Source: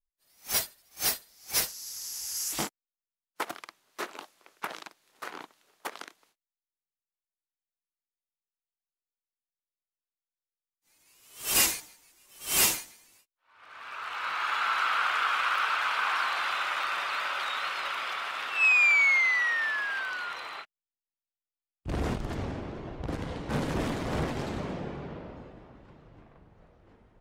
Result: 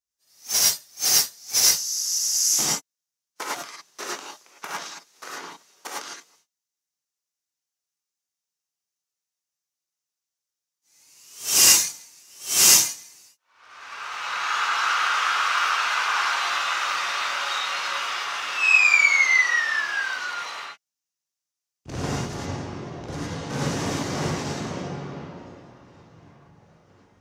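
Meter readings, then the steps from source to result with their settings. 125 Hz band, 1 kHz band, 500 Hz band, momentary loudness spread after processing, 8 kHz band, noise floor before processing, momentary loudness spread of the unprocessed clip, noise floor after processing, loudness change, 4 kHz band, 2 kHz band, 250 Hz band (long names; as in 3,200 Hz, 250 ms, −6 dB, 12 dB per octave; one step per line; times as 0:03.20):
+4.0 dB, +4.5 dB, +3.0 dB, 21 LU, +12.5 dB, below −85 dBFS, 19 LU, below −85 dBFS, +7.5 dB, +10.0 dB, +4.5 dB, +3.5 dB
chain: high-pass filter 96 Hz
parametric band 6,000 Hz +12.5 dB 0.79 octaves
reverb whose tail is shaped and stops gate 130 ms rising, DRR −5.5 dB
level −2.5 dB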